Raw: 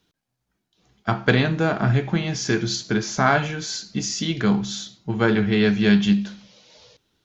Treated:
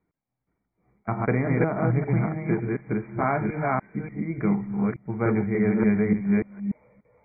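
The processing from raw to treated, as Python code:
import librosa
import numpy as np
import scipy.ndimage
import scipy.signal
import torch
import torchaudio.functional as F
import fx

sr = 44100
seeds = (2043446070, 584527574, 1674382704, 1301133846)

y = fx.reverse_delay(x, sr, ms=292, wet_db=-0.5)
y = fx.brickwall_lowpass(y, sr, high_hz=2400.0)
y = fx.peak_eq(y, sr, hz=1600.0, db=-9.5, octaves=0.36)
y = y * librosa.db_to_amplitude(-5.0)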